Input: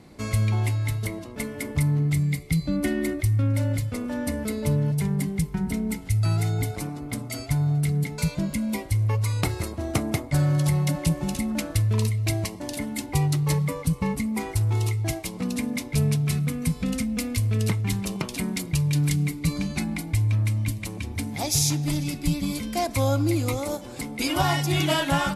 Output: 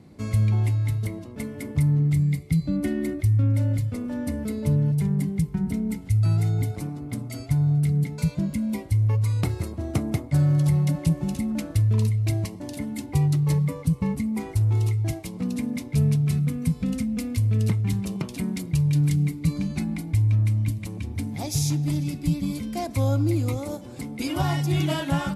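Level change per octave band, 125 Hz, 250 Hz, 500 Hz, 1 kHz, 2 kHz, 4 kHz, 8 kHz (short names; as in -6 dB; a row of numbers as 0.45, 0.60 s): +2.0, +1.0, -3.0, -5.5, -6.5, -7.0, -7.0 dB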